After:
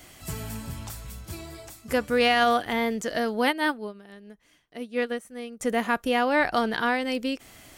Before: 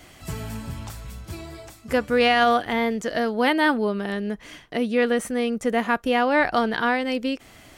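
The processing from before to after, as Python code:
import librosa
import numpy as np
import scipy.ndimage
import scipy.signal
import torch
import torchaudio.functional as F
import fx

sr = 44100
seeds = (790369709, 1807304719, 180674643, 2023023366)

y = fx.high_shelf(x, sr, hz=6300.0, db=9.0)
y = fx.upward_expand(y, sr, threshold_db=-28.0, expansion=2.5, at=(3.5, 5.59), fade=0.02)
y = y * librosa.db_to_amplitude(-3.0)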